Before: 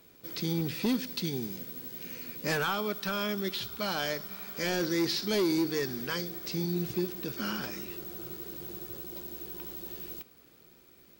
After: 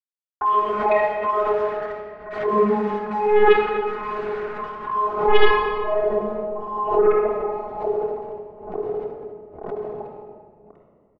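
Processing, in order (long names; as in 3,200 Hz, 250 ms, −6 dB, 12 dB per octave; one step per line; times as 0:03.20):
frequency axis turned over on the octave scale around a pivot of 410 Hz
spectral tilt −3.5 dB per octave
mains-hum notches 60/120/180/240/300/360/420/480/540 Hz
auto-filter high-pass sine 1.1 Hz 430–1,600 Hz
channel vocoder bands 32, saw 210 Hz
bit reduction 8 bits
low-pass filter sweep 1,600 Hz → 740 Hz, 0:04.29–0:06.18
sine wavefolder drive 11 dB, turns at −12 dBFS
multiband delay without the direct sound lows, highs 50 ms, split 1,500 Hz
rectangular room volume 2,800 cubic metres, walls mixed, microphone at 3.4 metres
background raised ahead of every attack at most 82 dB per second
level −4 dB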